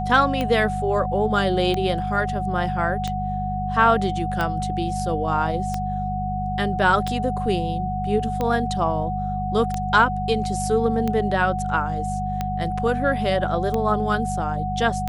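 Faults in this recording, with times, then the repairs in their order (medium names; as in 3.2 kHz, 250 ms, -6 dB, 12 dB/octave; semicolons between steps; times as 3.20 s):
hum 50 Hz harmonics 4 -28 dBFS
tick 45 rpm -12 dBFS
whine 740 Hz -26 dBFS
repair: de-click; de-hum 50 Hz, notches 4; band-stop 740 Hz, Q 30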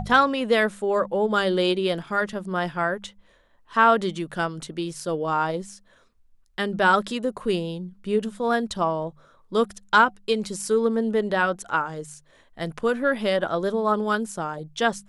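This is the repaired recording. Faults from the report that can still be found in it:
nothing left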